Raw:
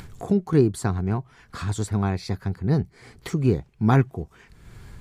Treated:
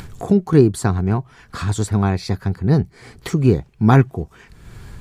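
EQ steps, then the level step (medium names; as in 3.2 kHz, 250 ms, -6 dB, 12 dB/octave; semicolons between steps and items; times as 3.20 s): band-stop 2.1 kHz, Q 29; +6.0 dB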